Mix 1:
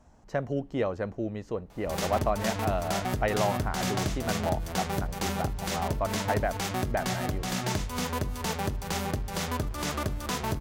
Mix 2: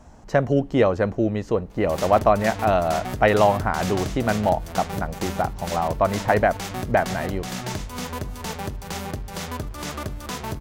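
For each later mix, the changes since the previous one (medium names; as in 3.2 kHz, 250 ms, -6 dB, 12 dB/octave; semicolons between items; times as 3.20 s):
speech +10.5 dB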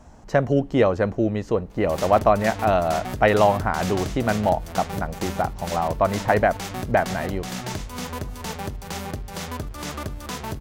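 reverb: off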